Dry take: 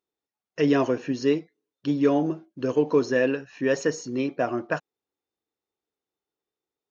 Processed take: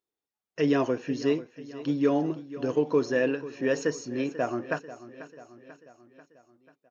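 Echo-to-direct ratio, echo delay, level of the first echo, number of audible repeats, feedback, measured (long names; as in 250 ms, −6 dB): −14.0 dB, 490 ms, −15.5 dB, 4, 56%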